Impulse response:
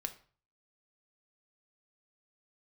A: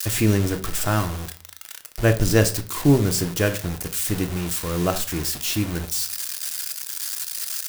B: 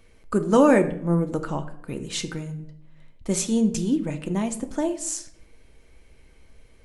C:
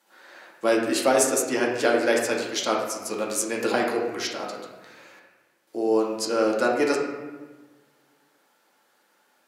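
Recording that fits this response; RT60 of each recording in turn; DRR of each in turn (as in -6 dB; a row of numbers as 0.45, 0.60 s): A; 0.40, 0.70, 1.3 s; 6.5, 6.5, -2.5 dB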